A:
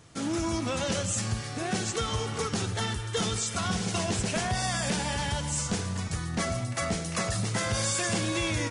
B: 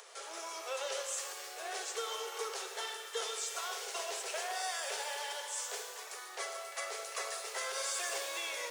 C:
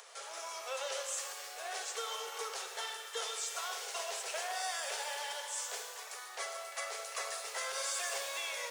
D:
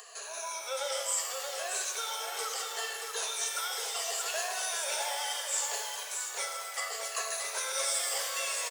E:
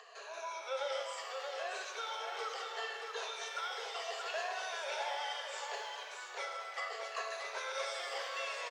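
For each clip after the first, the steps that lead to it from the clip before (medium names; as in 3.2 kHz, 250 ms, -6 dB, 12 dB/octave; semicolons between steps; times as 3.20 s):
steep high-pass 390 Hz 96 dB/octave; upward compressor, threshold -37 dBFS; pitch-shifted reverb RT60 1.5 s, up +12 st, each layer -8 dB, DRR 6 dB; trim -8 dB
high-pass 470 Hz 24 dB/octave
drifting ripple filter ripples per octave 1.5, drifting -0.71 Hz, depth 14 dB; treble shelf 5.9 kHz +6.5 dB; delay 628 ms -5.5 dB
distance through air 220 m; trim -1 dB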